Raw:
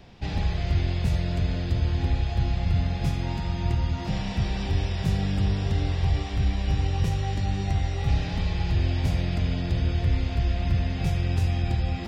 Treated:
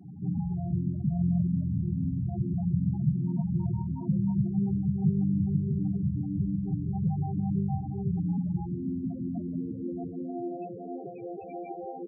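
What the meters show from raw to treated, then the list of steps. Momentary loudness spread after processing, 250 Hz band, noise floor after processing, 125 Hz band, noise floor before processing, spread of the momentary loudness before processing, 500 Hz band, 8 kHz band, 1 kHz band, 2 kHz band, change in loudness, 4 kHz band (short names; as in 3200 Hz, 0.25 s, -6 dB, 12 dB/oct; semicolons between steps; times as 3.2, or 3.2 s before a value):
10 LU, +4.0 dB, -41 dBFS, -4.5 dB, -31 dBFS, 3 LU, -4.5 dB, n/a, -7.0 dB, under -30 dB, -3.5 dB, under -40 dB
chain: in parallel at -1 dB: limiter -22.5 dBFS, peak gain reduction 9 dB; on the sum: pre-echo 0.189 s -13 dB; high-pass sweep 160 Hz -> 400 Hz, 7.82–11.13; on a send: echo 0.484 s -6 dB; on the sum: upward compressor, threshold -42 dBFS; loudest bins only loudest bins 8; gain -6.5 dB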